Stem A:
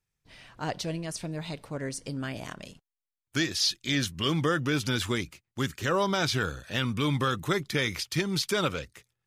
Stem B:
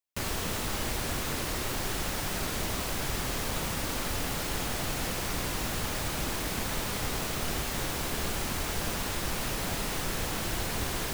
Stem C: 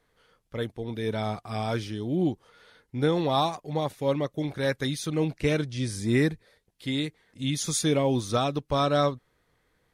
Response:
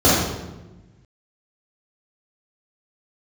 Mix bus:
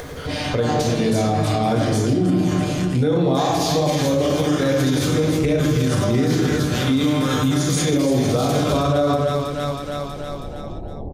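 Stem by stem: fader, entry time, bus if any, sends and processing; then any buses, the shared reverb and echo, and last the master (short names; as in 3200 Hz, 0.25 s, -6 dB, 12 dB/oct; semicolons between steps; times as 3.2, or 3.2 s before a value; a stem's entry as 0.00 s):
+2.0 dB, 0.00 s, send -16.5 dB, echo send -3.5 dB, resonator 150 Hz, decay 0.2 s, harmonics all, mix 90%; spectral compressor 2:1
-15.5 dB, 0.25 s, no send, no echo send, steep low-pass 800 Hz 48 dB/oct
+3.0 dB, 0.00 s, send -22 dB, echo send -6.5 dB, dry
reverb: on, RT60 1.1 s, pre-delay 3 ms
echo: feedback echo 0.321 s, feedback 44%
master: upward compressor, threshold -13 dBFS; limiter -10.5 dBFS, peak gain reduction 11 dB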